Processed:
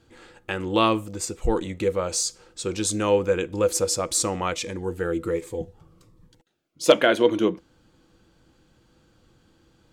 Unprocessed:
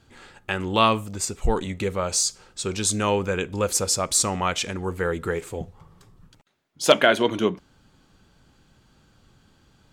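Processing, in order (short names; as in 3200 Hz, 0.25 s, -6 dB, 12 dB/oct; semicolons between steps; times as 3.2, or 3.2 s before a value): small resonant body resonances 330/490 Hz, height 12 dB, ringing for 95 ms; 4.54–6.9 cascading phaser falling 1.3 Hz; gain -3 dB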